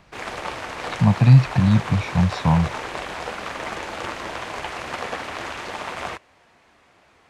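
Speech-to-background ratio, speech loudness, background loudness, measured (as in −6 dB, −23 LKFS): 13.0 dB, −18.0 LKFS, −31.0 LKFS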